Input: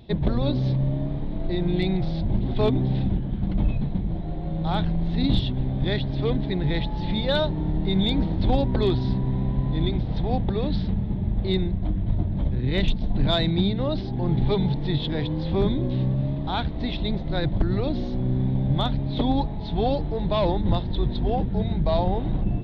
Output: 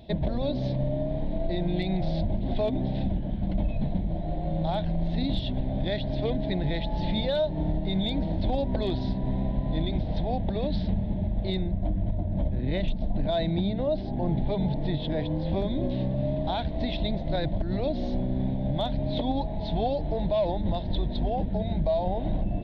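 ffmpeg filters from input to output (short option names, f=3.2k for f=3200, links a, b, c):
-filter_complex "[0:a]asettb=1/sr,asplit=3[a][b][c];[a]atrim=end=11.594[d];[b]atrim=start=11.59:end=15.53,asetpts=PTS-STARTPTS,afade=t=in:d=0.004:c=qsin,afade=t=out:st=3.936:d=0.004:c=qsin,highshelf=f=3.1k:g=-9[e];[c]atrim=start=15.526[f];[d][e]acrossfade=d=0.004:c1=hsin:c2=qsin[g];[g][f]acrossfade=d=0.004:c1=qsin:c2=hsin,equalizer=f=125:t=o:w=0.33:g=-7,equalizer=f=400:t=o:w=0.33:g=-5,equalizer=f=630:t=o:w=0.33:g=11,equalizer=f=1.25k:t=o:w=0.33:g=-11,alimiter=limit=-18dB:level=0:latency=1:release=173"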